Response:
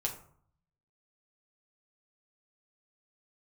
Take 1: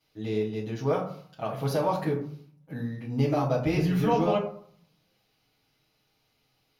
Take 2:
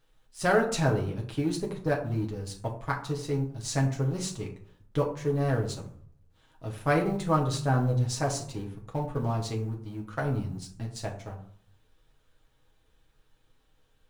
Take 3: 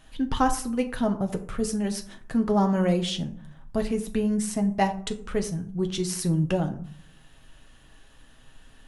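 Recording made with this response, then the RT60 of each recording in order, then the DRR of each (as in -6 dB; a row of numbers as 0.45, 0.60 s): 2; 0.55, 0.55, 0.60 s; -9.5, -1.0, 5.0 dB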